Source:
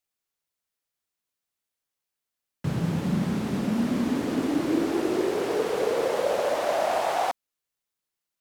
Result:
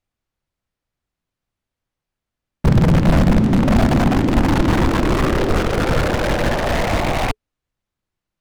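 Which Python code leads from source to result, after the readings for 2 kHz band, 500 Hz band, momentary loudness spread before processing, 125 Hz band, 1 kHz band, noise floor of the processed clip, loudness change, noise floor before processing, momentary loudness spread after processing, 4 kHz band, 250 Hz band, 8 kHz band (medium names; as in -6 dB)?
+12.0 dB, +4.5 dB, 3 LU, +15.5 dB, +7.0 dB, -85 dBFS, +9.0 dB, under -85 dBFS, 5 LU, +9.5 dB, +9.0 dB, +6.5 dB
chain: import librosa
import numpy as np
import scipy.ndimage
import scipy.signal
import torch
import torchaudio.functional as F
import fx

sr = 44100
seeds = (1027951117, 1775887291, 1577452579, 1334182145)

y = (np.mod(10.0 ** (21.0 / 20.0) * x + 1.0, 2.0) - 1.0) / 10.0 ** (21.0 / 20.0)
y = fx.riaa(y, sr, side='playback')
y = fx.notch(y, sr, hz=430.0, q=13.0)
y = y * 10.0 ** (6.5 / 20.0)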